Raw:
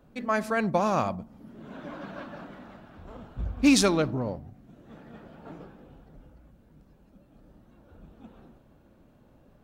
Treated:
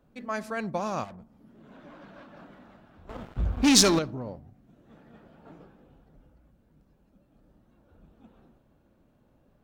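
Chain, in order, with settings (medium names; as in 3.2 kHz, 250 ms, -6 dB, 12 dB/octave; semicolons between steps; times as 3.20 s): 3.09–3.99 s: waveshaping leveller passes 3; dynamic bell 5.7 kHz, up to +8 dB, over -42 dBFS, Q 0.98; 1.04–2.37 s: valve stage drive 36 dB, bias 0.4; trim -6 dB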